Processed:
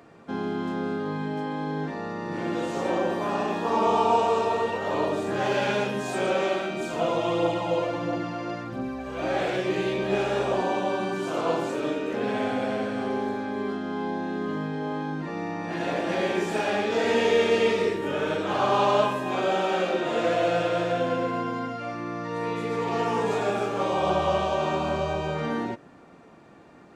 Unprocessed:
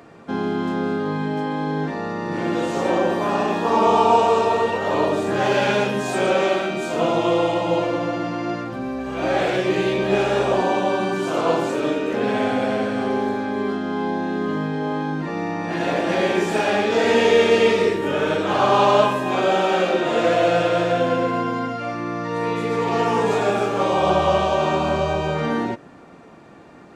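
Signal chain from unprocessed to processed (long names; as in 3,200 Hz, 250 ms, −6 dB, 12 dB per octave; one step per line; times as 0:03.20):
0:06.80–0:09.22: phase shifter 1.5 Hz, delay 2.1 ms, feedback 35%
level −6 dB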